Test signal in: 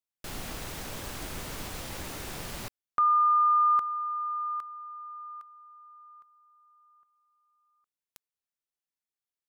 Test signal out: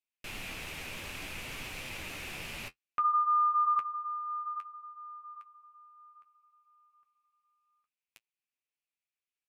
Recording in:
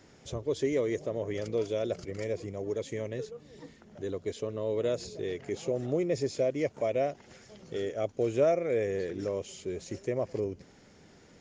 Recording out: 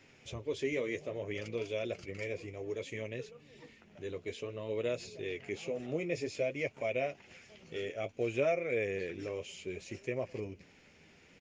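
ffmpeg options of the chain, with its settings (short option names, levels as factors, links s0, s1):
-af "equalizer=f=2500:t=o:w=0.67:g=14.5,flanger=delay=7.5:depth=5.2:regen=-40:speed=0.59:shape=sinusoidal,aresample=32000,aresample=44100,volume=0.75"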